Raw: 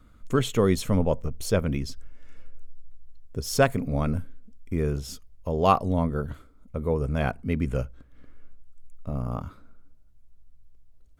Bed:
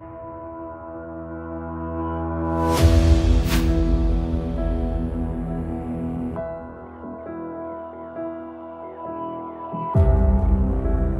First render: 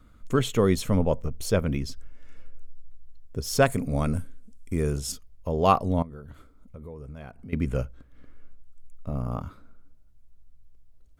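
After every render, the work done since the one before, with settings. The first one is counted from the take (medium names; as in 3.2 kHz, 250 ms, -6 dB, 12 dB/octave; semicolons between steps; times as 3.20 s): 3.66–5.12 s: peaking EQ 8.8 kHz +12.5 dB 1.1 oct; 6.02–7.53 s: compression 4:1, threshold -40 dBFS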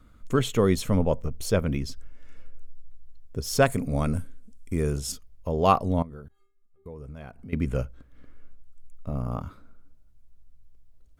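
6.28–6.86 s: inharmonic resonator 390 Hz, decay 0.52 s, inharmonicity 0.008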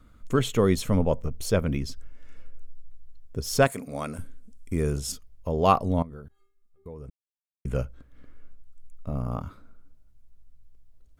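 3.67–4.19 s: high-pass 560 Hz 6 dB/octave; 7.10–7.65 s: mute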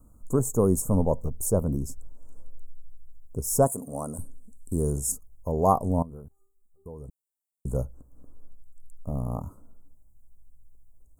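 Chebyshev band-stop 960–7700 Hz, order 3; treble shelf 2.5 kHz +9.5 dB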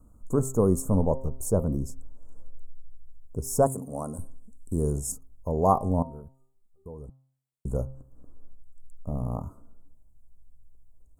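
treble shelf 7.9 kHz -8.5 dB; de-hum 132.5 Hz, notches 10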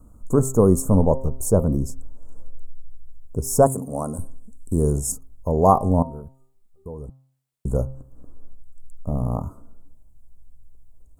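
trim +6.5 dB; peak limiter -3 dBFS, peak gain reduction 1 dB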